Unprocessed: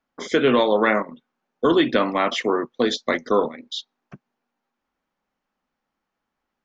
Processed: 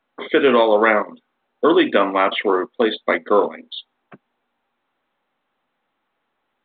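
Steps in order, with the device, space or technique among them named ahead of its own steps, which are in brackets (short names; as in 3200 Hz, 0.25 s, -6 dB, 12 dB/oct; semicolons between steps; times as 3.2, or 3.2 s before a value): telephone (BPF 290–3500 Hz; gain +4.5 dB; µ-law 64 kbps 8000 Hz)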